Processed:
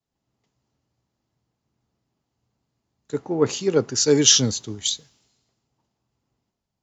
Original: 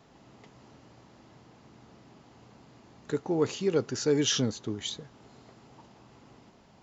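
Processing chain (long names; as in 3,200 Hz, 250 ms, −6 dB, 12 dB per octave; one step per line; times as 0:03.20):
bass and treble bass +1 dB, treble +8 dB
multiband upward and downward expander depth 100%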